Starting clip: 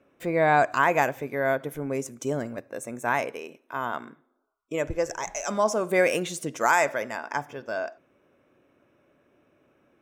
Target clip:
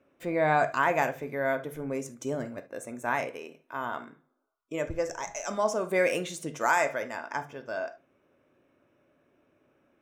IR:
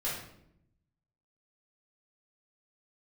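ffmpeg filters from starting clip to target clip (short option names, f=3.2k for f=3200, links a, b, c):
-filter_complex "[0:a]asplit=2[a][b];[1:a]atrim=start_sample=2205,atrim=end_sample=3528,lowpass=8.5k[c];[b][c]afir=irnorm=-1:irlink=0,volume=-11dB[d];[a][d]amix=inputs=2:normalize=0,volume=-5.5dB"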